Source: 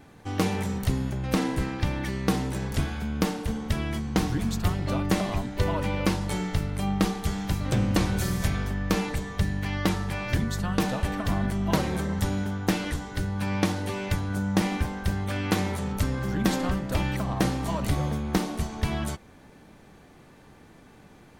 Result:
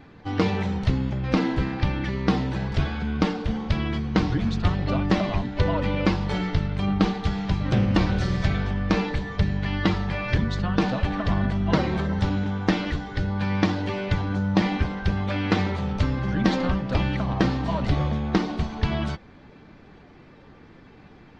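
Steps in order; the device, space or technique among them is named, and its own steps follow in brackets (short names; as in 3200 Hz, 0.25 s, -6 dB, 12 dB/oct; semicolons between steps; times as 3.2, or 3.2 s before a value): clip after many re-uploads (LPF 4700 Hz 24 dB/oct; bin magnitudes rounded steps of 15 dB); gain +3.5 dB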